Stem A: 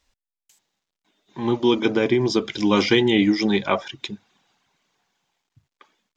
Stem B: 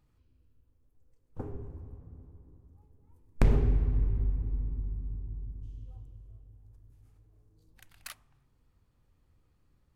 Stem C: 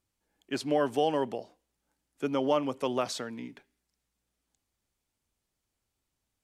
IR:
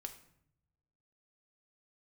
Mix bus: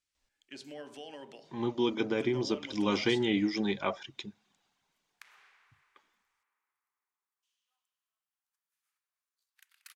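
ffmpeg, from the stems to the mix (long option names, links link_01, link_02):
-filter_complex "[0:a]adelay=150,volume=-11dB,asplit=2[link_01][link_02];[link_02]volume=-23dB[link_03];[1:a]adelay=1800,volume=-4.5dB[link_04];[2:a]lowpass=7600,alimiter=limit=-20dB:level=0:latency=1:release=56,volume=-1dB,asplit=2[link_05][link_06];[link_06]volume=-12dB[link_07];[link_04][link_05]amix=inputs=2:normalize=0,highpass=frequency=1300:width=0.5412,highpass=frequency=1300:width=1.3066,acompressor=threshold=-50dB:ratio=5,volume=0dB[link_08];[3:a]atrim=start_sample=2205[link_09];[link_03][link_07]amix=inputs=2:normalize=0[link_10];[link_10][link_09]afir=irnorm=-1:irlink=0[link_11];[link_01][link_08][link_11]amix=inputs=3:normalize=0"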